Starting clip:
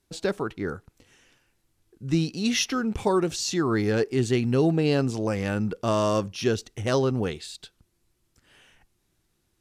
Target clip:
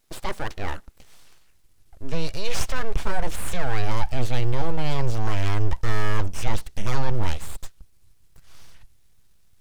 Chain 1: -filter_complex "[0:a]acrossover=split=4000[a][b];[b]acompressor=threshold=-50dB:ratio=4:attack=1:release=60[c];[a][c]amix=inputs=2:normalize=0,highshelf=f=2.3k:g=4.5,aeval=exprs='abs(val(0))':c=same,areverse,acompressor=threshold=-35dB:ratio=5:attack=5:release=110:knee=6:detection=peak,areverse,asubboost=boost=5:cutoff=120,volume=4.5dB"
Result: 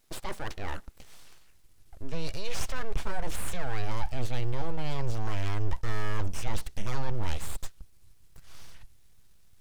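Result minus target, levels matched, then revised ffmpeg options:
compressor: peak gain reduction +7.5 dB
-filter_complex "[0:a]acrossover=split=4000[a][b];[b]acompressor=threshold=-50dB:ratio=4:attack=1:release=60[c];[a][c]amix=inputs=2:normalize=0,highshelf=f=2.3k:g=4.5,aeval=exprs='abs(val(0))':c=same,areverse,acompressor=threshold=-25.5dB:ratio=5:attack=5:release=110:knee=6:detection=peak,areverse,asubboost=boost=5:cutoff=120,volume=4.5dB"

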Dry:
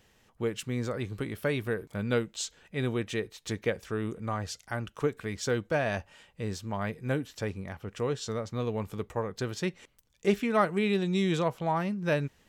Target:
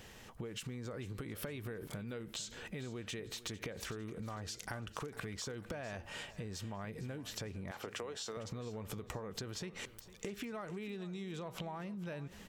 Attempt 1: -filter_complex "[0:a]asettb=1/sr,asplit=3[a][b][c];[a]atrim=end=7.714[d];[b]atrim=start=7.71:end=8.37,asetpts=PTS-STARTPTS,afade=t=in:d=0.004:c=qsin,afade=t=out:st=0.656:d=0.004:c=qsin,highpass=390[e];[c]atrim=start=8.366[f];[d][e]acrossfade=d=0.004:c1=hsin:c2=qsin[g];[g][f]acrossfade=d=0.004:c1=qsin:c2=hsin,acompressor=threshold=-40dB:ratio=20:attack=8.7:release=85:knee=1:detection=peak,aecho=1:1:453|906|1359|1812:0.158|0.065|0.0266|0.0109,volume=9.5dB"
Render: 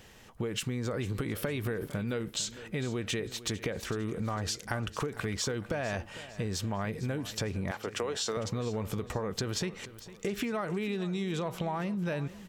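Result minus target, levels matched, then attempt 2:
compressor: peak gain reduction -10.5 dB
-filter_complex "[0:a]asettb=1/sr,asplit=3[a][b][c];[a]atrim=end=7.714[d];[b]atrim=start=7.71:end=8.37,asetpts=PTS-STARTPTS,afade=t=in:d=0.004:c=qsin,afade=t=out:st=0.656:d=0.004:c=qsin,highpass=390[e];[c]atrim=start=8.366[f];[d][e]acrossfade=d=0.004:c1=hsin:c2=qsin[g];[g][f]acrossfade=d=0.004:c1=qsin:c2=hsin,acompressor=threshold=-51dB:ratio=20:attack=8.7:release=85:knee=1:detection=peak,aecho=1:1:453|906|1359|1812:0.158|0.065|0.0266|0.0109,volume=9.5dB"

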